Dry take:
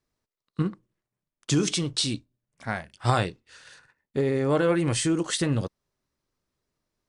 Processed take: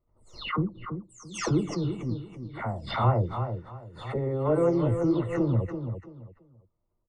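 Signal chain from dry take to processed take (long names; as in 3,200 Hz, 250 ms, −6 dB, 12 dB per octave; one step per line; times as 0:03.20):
every frequency bin delayed by itself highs early, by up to 395 ms
Savitzky-Golay smoothing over 65 samples
low shelf with overshoot 110 Hz +7.5 dB, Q 1.5
on a send: repeating echo 335 ms, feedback 25%, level −8 dB
on the sum: background raised ahead of every attack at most 94 dB per second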